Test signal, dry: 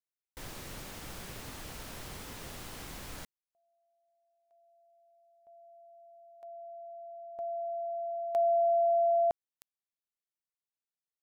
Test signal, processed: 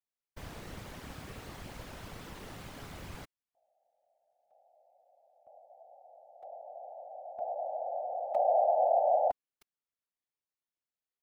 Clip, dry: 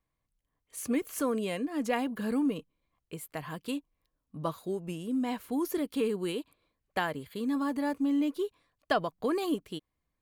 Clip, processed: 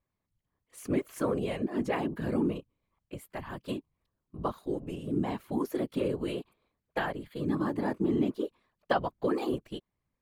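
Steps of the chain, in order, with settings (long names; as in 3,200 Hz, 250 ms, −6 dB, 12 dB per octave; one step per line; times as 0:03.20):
high-shelf EQ 4,100 Hz −10 dB
random phases in short frames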